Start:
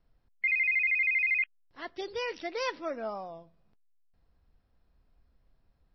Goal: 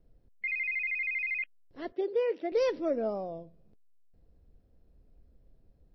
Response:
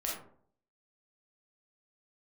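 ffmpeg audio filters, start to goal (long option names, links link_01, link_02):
-filter_complex "[0:a]asettb=1/sr,asplit=3[link_01][link_02][link_03];[link_01]atrim=end=1.924[link_04];[link_02]atrim=start=1.92:end=2.52,asetpts=PTS-STARTPTS,afade=type=in:duration=0.004:curve=qsin,afade=type=out:start_time=0.596:duration=0.004:curve=qsin,highpass=340,lowpass=2400[link_05];[link_03]atrim=start=2.516[link_06];[link_04][link_05]acrossfade=duration=0.004:curve1=hsin:curve2=qsin[link_07];[link_07][link_06]acrossfade=duration=0.004:curve1=qsin:curve2=hsin,lowshelf=frequency=710:width_type=q:width=1.5:gain=11,volume=-4.5dB"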